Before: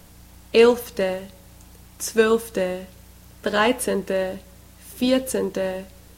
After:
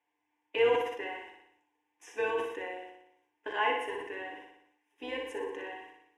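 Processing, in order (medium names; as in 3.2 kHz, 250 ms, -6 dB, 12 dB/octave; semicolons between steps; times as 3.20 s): octave divider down 2 oct, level 0 dB; gate -37 dBFS, range -17 dB; band-pass 590–3000 Hz; static phaser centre 880 Hz, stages 8; on a send: flutter echo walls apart 10.3 m, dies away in 0.66 s; on the sum: FDN reverb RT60 0.33 s, low-frequency decay 1×, high-frequency decay 0.8×, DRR 3 dB; decay stretcher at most 73 dB/s; trim -7.5 dB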